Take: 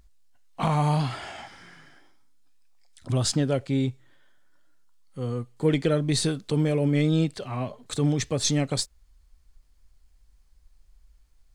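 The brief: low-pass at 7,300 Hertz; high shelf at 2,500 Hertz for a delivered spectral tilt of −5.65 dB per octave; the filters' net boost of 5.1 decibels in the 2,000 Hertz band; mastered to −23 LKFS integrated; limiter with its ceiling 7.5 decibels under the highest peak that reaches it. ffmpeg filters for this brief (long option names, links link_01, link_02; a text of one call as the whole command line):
ffmpeg -i in.wav -af "lowpass=7300,equalizer=frequency=2000:width_type=o:gain=8,highshelf=frequency=2500:gain=-4,volume=5.5dB,alimiter=limit=-12.5dB:level=0:latency=1" out.wav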